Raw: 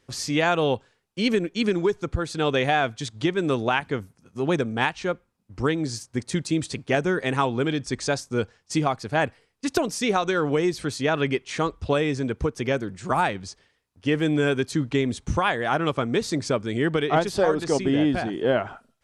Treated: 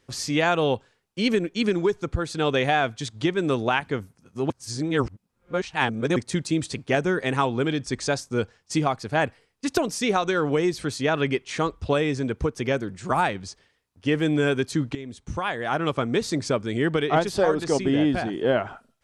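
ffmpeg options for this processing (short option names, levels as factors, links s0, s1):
-filter_complex "[0:a]asplit=4[s0][s1][s2][s3];[s0]atrim=end=4.502[s4];[s1]atrim=start=4.498:end=6.162,asetpts=PTS-STARTPTS,areverse[s5];[s2]atrim=start=6.158:end=14.95,asetpts=PTS-STARTPTS,afade=t=out:st=8.788:d=0.004:c=hsin:silence=0.149624[s6];[s3]atrim=start=14.95,asetpts=PTS-STARTPTS,afade=t=in:d=1.02:silence=0.149624[s7];[s4][s5]acrossfade=d=0.004:c1=hsin:c2=hsin[s8];[s6][s7]concat=n=2:v=0:a=1[s9];[s8][s9]acrossfade=d=0.004:c1=hsin:c2=hsin"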